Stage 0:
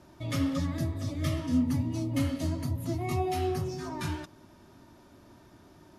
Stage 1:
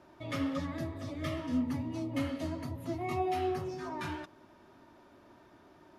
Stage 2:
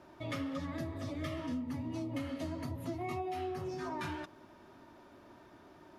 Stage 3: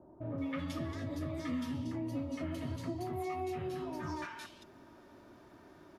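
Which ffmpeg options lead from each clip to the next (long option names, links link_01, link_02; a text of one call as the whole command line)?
ffmpeg -i in.wav -af "bass=frequency=250:gain=-10,treble=frequency=4000:gain=-11" out.wav
ffmpeg -i in.wav -af "acompressor=threshold=-36dB:ratio=10,volume=1.5dB" out.wav
ffmpeg -i in.wav -filter_complex "[0:a]acrossover=split=870|2900[link_01][link_02][link_03];[link_02]adelay=210[link_04];[link_03]adelay=380[link_05];[link_01][link_04][link_05]amix=inputs=3:normalize=0,volume=1dB" out.wav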